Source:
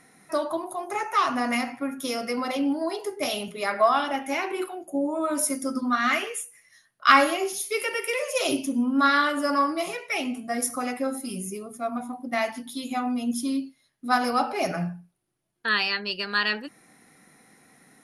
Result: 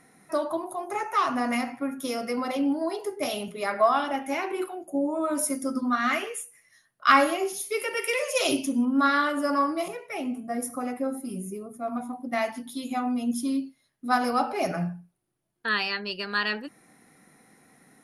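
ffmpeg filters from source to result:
-af "asetnsamples=n=441:p=0,asendcmd='7.97 equalizer g 1.5;8.85 equalizer g -5.5;9.88 equalizer g -13;11.88 equalizer g -4',equalizer=f=4.3k:t=o:w=2.9:g=-4.5"

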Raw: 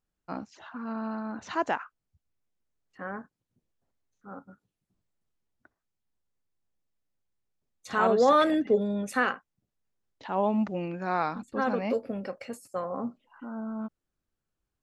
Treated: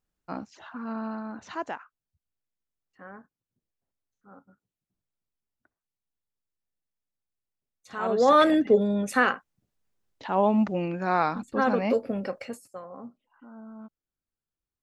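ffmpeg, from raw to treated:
-af "volume=13dB,afade=t=out:st=0.96:d=0.85:silence=0.354813,afade=t=in:st=7.99:d=0.43:silence=0.251189,afade=t=out:st=12.37:d=0.42:silence=0.223872"

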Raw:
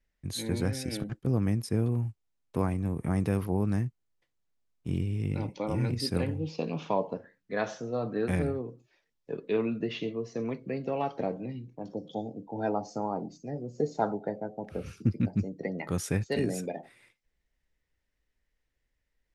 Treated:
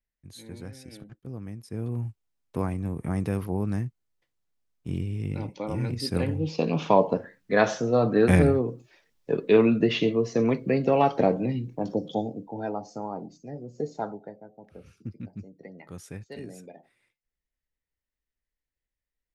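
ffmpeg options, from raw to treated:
-af "volume=10dB,afade=t=in:st=1.64:d=0.42:silence=0.281838,afade=t=in:st=6:d=1.11:silence=0.316228,afade=t=out:st=11.86:d=0.8:silence=0.251189,afade=t=out:st=13.89:d=0.49:silence=0.354813"

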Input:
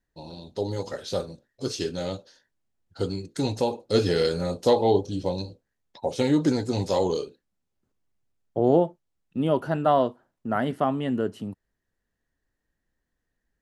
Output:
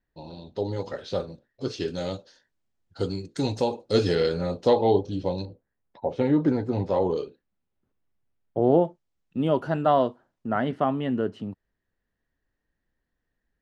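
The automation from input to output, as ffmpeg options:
-af "asetnsamples=n=441:p=0,asendcmd='1.88 lowpass f 7100;4.15 lowpass f 3800;5.45 lowpass f 1800;7.17 lowpass f 3100;8.85 lowpass f 6700;10.49 lowpass f 4100',lowpass=3.7k"

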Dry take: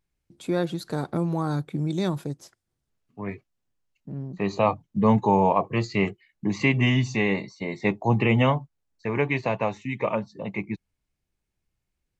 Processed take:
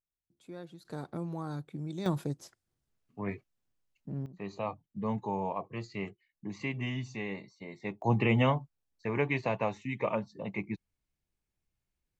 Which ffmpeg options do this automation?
-af "asetnsamples=n=441:p=0,asendcmd='0.85 volume volume -11.5dB;2.06 volume volume -3dB;4.26 volume volume -14dB;8.02 volume volume -5.5dB',volume=-20dB"

